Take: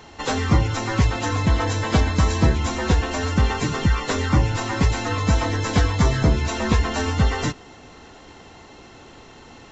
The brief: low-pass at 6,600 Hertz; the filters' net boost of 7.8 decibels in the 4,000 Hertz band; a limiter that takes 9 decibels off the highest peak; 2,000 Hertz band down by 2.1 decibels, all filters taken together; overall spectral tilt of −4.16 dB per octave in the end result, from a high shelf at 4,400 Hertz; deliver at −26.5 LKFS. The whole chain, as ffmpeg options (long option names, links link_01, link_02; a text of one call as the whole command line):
ffmpeg -i in.wav -af "lowpass=6600,equalizer=frequency=2000:width_type=o:gain=-6.5,equalizer=frequency=4000:width_type=o:gain=7.5,highshelf=frequency=4400:gain=8.5,volume=-3.5dB,alimiter=limit=-16.5dB:level=0:latency=1" out.wav